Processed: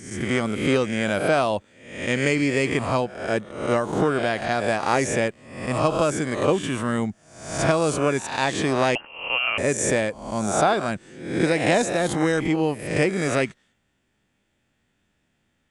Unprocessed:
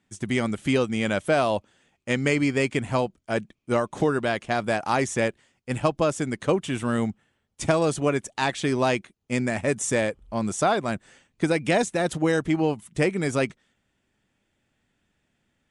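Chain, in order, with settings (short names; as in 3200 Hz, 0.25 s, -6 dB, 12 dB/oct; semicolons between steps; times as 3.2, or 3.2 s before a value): spectral swells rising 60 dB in 0.68 s; 8.95–9.58 inverted band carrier 3000 Hz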